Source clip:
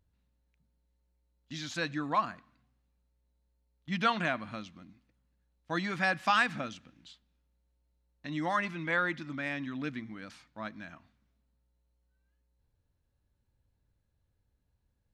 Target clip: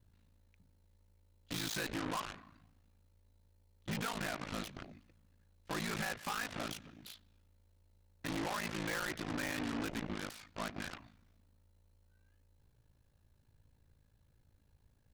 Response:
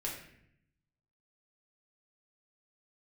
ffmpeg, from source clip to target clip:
-af "acompressor=threshold=-36dB:ratio=8,aeval=exprs='val(0)*sin(2*PI*27*n/s)':channel_layout=same,asoftclip=type=tanh:threshold=-39dB,aeval=exprs='0.0112*(cos(1*acos(clip(val(0)/0.0112,-1,1)))-cos(1*PI/2))+0.00398*(cos(7*acos(clip(val(0)/0.0112,-1,1)))-cos(7*PI/2))':channel_layout=same,volume=6.5dB"

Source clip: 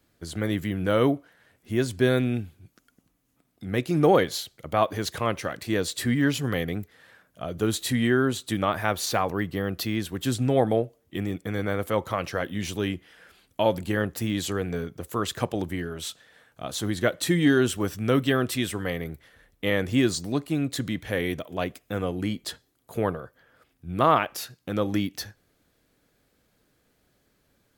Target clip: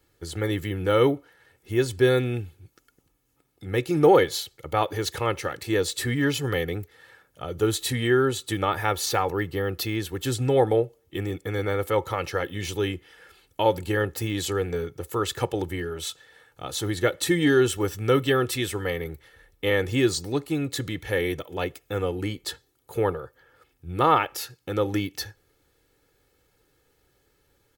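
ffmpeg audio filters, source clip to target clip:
ffmpeg -i in.wav -af "equalizer=frequency=16000:width=7:gain=5,aecho=1:1:2.3:0.64" out.wav

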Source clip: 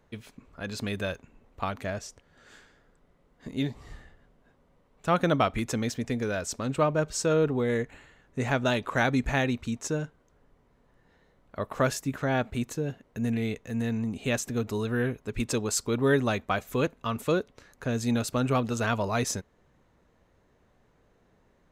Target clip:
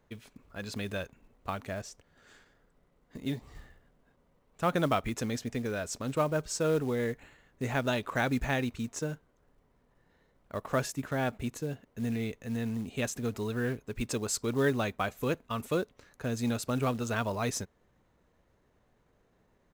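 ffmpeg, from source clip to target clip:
ffmpeg -i in.wav -af "atempo=1.1,acrusher=bits=6:mode=log:mix=0:aa=0.000001,volume=-4dB" out.wav

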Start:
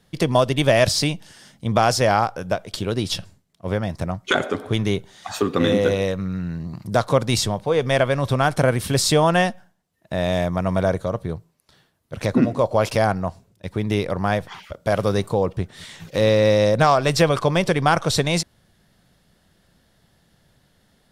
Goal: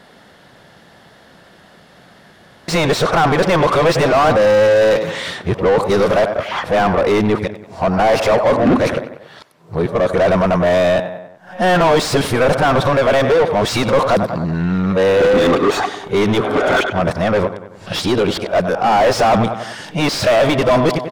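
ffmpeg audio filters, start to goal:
ffmpeg -i in.wav -filter_complex "[0:a]areverse,asplit=2[link_01][link_02];[link_02]adelay=95,lowpass=frequency=3900:poles=1,volume=-19dB,asplit=2[link_03][link_04];[link_04]adelay=95,lowpass=frequency=3900:poles=1,volume=0.52,asplit=2[link_05][link_06];[link_06]adelay=95,lowpass=frequency=3900:poles=1,volume=0.52,asplit=2[link_07][link_08];[link_08]adelay=95,lowpass=frequency=3900:poles=1,volume=0.52[link_09];[link_01][link_03][link_05][link_07][link_09]amix=inputs=5:normalize=0,asplit=2[link_10][link_11];[link_11]highpass=frequency=720:poles=1,volume=30dB,asoftclip=type=tanh:threshold=-4.5dB[link_12];[link_10][link_12]amix=inputs=2:normalize=0,lowpass=frequency=1300:poles=1,volume=-6dB" out.wav

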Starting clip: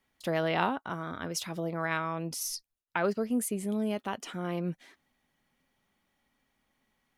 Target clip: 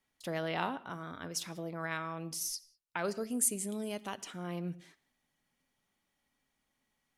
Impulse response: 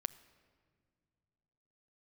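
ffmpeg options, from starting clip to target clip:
-filter_complex "[0:a]asetnsamples=nb_out_samples=441:pad=0,asendcmd='2.99 equalizer g 15;4.15 equalizer g 6.5',equalizer=frequency=7900:width_type=o:width=1.8:gain=5.5[link_01];[1:a]atrim=start_sample=2205,afade=type=out:start_time=0.25:duration=0.01,atrim=end_sample=11466[link_02];[link_01][link_02]afir=irnorm=-1:irlink=0,volume=-5.5dB"

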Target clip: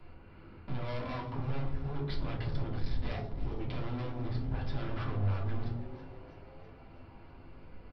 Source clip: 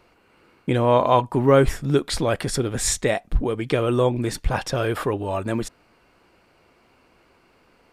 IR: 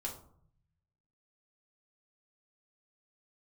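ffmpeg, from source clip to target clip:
-filter_complex "[0:a]bass=frequency=250:gain=14,treble=frequency=4000:gain=-7,bandreject=frequency=60:width_type=h:width=6,bandreject=frequency=120:width_type=h:width=6,bandreject=frequency=180:width_type=h:width=6,bandreject=frequency=240:width_type=h:width=6,bandreject=frequency=300:width_type=h:width=6,bandreject=frequency=360:width_type=h:width=6,bandreject=frequency=420:width_type=h:width=6,acompressor=threshold=-23dB:ratio=6,aresample=11025,asoftclip=type=hard:threshold=-32dB,aresample=44100,aeval=exprs='0.0447*(cos(1*acos(clip(val(0)/0.0447,-1,1)))-cos(1*PI/2))+0.000398*(cos(6*acos(clip(val(0)/0.0447,-1,1)))-cos(6*PI/2))':channel_layout=same,acrossover=split=170|1100[link_01][link_02][link_03];[link_02]asoftclip=type=tanh:threshold=-38.5dB[link_04];[link_01][link_04][link_03]amix=inputs=3:normalize=0,asplit=7[link_05][link_06][link_07][link_08][link_09][link_10][link_11];[link_06]adelay=326,afreqshift=140,volume=-15dB[link_12];[link_07]adelay=652,afreqshift=280,volume=-19.7dB[link_13];[link_08]adelay=978,afreqshift=420,volume=-24.5dB[link_14];[link_09]adelay=1304,afreqshift=560,volume=-29.2dB[link_15];[link_10]adelay=1630,afreqshift=700,volume=-33.9dB[link_16];[link_11]adelay=1956,afreqshift=840,volume=-38.7dB[link_17];[link_05][link_12][link_13][link_14][link_15][link_16][link_17]amix=inputs=7:normalize=0[link_18];[1:a]atrim=start_sample=2205[link_19];[link_18][link_19]afir=irnorm=-1:irlink=0,volume=-2dB"

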